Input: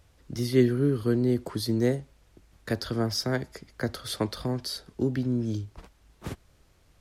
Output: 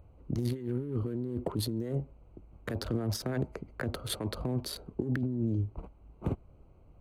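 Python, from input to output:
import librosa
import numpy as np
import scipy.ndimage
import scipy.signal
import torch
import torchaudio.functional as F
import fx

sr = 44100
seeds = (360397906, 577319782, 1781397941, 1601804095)

y = fx.wiener(x, sr, points=25)
y = fx.over_compress(y, sr, threshold_db=-32.0, ratio=-1.0)
y = fx.peak_eq(y, sr, hz=5100.0, db=-11.5, octaves=0.59)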